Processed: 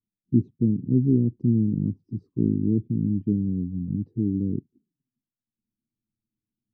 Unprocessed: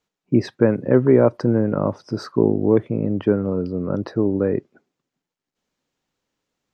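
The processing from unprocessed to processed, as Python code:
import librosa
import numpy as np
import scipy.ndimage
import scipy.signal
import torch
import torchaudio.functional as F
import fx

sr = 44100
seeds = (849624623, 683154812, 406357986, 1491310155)

y = fx.env_flanger(x, sr, rest_ms=9.1, full_db=-15.5)
y = scipy.signal.sosfilt(scipy.signal.cheby2(4, 40, 560.0, 'lowpass', fs=sr, output='sos'), y)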